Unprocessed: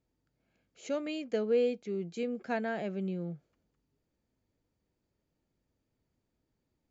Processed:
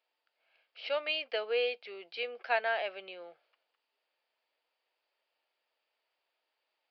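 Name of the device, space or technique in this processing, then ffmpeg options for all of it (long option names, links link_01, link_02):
musical greeting card: -af "aresample=11025,aresample=44100,highpass=frequency=630:width=0.5412,highpass=frequency=630:width=1.3066,equalizer=frequency=2800:width_type=o:width=0.54:gain=7.5,volume=6dB"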